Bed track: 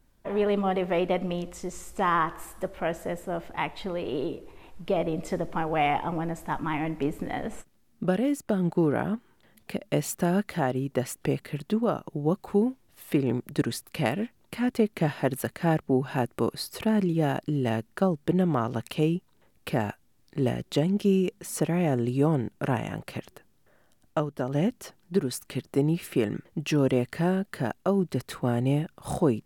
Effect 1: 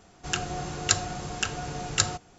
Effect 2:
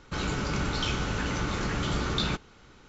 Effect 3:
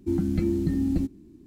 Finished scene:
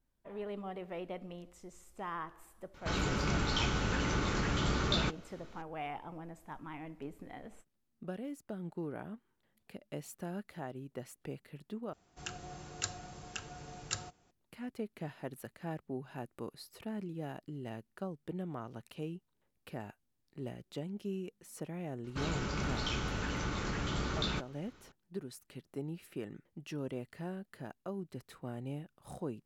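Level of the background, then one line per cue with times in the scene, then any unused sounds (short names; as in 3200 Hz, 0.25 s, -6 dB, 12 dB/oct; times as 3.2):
bed track -16.5 dB
2.74 add 2 -3 dB
11.93 replace with 1 -14 dB
22.04 add 2 -6.5 dB
not used: 3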